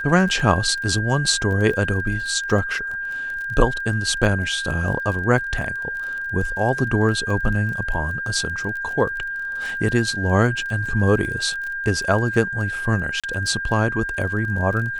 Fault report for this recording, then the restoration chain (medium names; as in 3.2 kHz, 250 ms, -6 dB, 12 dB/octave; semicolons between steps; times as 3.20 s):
crackle 27 per s -29 dBFS
whine 1.6 kHz -25 dBFS
13.20–13.24 s: dropout 36 ms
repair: de-click; band-stop 1.6 kHz, Q 30; interpolate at 13.20 s, 36 ms